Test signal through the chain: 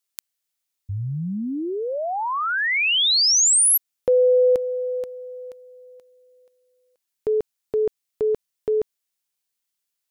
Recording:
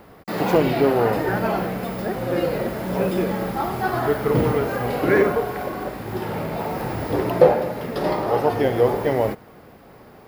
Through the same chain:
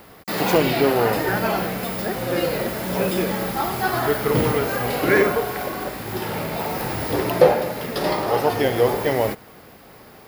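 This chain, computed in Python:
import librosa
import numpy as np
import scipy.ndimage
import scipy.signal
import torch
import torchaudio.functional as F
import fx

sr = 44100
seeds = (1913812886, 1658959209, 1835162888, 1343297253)

y = fx.high_shelf(x, sr, hz=2100.0, db=11.0)
y = F.gain(torch.from_numpy(y), -1.0).numpy()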